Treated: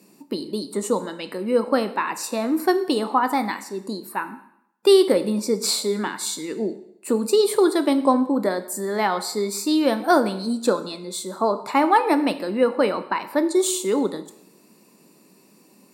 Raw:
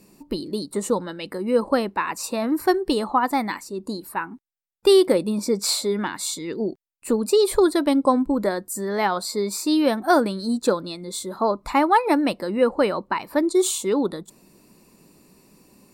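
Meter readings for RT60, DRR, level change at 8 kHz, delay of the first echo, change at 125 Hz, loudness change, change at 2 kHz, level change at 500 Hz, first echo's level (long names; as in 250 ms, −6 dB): 0.75 s, 10.0 dB, +0.5 dB, no echo audible, can't be measured, +0.5 dB, +0.5 dB, +0.5 dB, no echo audible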